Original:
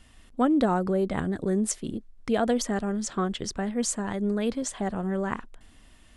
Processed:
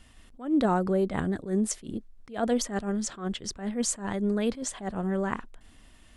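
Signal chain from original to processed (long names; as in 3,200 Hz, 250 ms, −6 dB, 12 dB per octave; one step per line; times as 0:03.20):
level that may rise only so fast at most 160 dB per second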